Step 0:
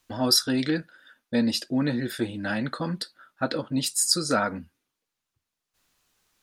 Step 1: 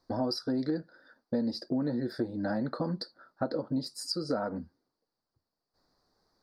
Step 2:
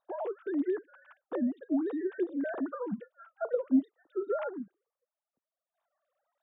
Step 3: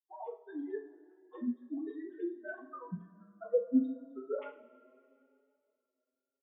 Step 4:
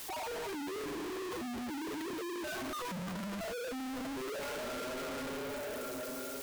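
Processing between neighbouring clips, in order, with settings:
FFT filter 100 Hz 0 dB, 500 Hz +6 dB, 780 Hz +4 dB, 1.9 kHz -8 dB, 2.9 kHz -29 dB, 4.6 kHz +4 dB, 6.8 kHz -18 dB; compression 4:1, threshold -29 dBFS, peak gain reduction 12 dB; dynamic bell 3.9 kHz, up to -4 dB, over -46 dBFS, Q 0.73
formants replaced by sine waves
expander on every frequency bin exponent 3; two-slope reverb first 0.35 s, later 2.7 s, from -21 dB, DRR 0 dB; endless flanger 6.2 ms +0.85 Hz
one-bit comparator

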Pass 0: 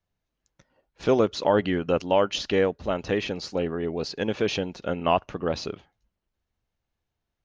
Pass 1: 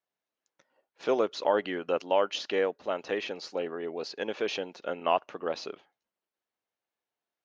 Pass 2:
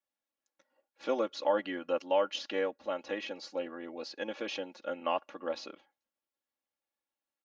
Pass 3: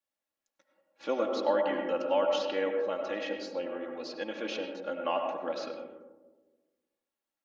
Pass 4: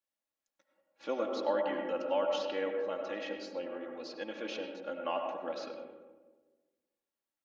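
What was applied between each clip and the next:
high-pass 390 Hz 12 dB/octave; treble shelf 5.9 kHz -7 dB; trim -3 dB
comb 3.6 ms, depth 85%; trim -6.5 dB
reverberation RT60 1.3 s, pre-delay 55 ms, DRR 2.5 dB
bucket-brigade echo 197 ms, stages 4096, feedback 31%, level -17.5 dB; trim -4 dB

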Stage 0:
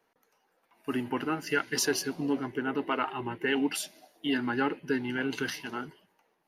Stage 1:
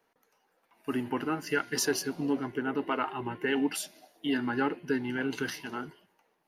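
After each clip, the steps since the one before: de-hum 353.9 Hz, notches 14; dynamic bell 3 kHz, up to -3 dB, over -42 dBFS, Q 0.81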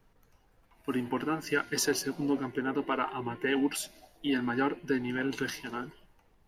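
added noise brown -63 dBFS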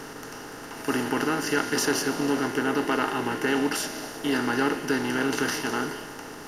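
spectral levelling over time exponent 0.4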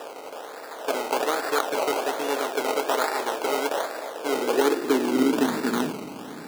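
decimation with a swept rate 20×, swing 60% 1.2 Hz; high-pass sweep 560 Hz -> 190 Hz, 4.06–5.87 s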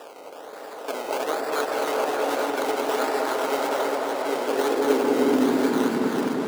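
chunks repeated in reverse 528 ms, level -2 dB; on a send: delay with an opening low-pass 203 ms, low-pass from 750 Hz, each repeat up 1 oct, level 0 dB; on the sum: trim -4.5 dB

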